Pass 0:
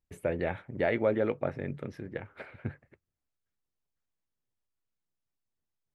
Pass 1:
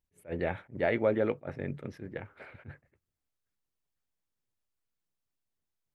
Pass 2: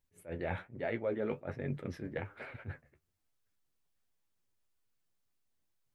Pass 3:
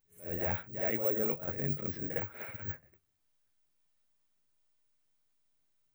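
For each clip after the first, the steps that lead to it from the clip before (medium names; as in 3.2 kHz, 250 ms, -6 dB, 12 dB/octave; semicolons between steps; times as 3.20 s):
attacks held to a fixed rise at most 280 dB/s
reverse; compression 4:1, threshold -37 dBFS, peak gain reduction 13.5 dB; reverse; flange 1.2 Hz, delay 7 ms, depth 7.4 ms, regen +44%; trim +7 dB
careless resampling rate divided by 2×, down none, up zero stuff; reverse echo 57 ms -7.5 dB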